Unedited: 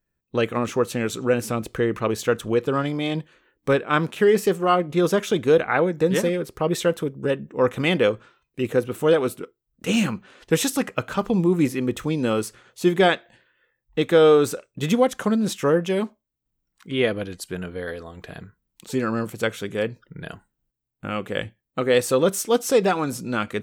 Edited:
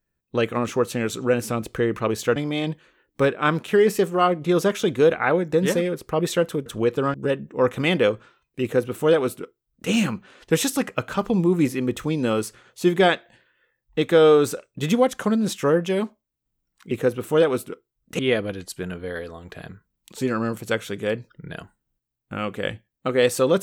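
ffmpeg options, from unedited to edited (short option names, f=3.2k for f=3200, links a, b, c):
-filter_complex "[0:a]asplit=6[a][b][c][d][e][f];[a]atrim=end=2.362[g];[b]atrim=start=2.838:end=7.142[h];[c]atrim=start=2.358:end=2.842[i];[d]atrim=start=7.138:end=16.912[j];[e]atrim=start=8.618:end=9.902[k];[f]atrim=start=16.908[l];[g][h]acrossfade=d=0.004:c1=hsin:c2=hsin[m];[m][i]acrossfade=d=0.004:c1=hsin:c2=hsin[n];[n][j]acrossfade=d=0.004:c1=hsin:c2=hsin[o];[o][k]acrossfade=d=0.004:c1=hsin:c2=hsin[p];[p][l]acrossfade=d=0.004:c1=hsin:c2=hsin"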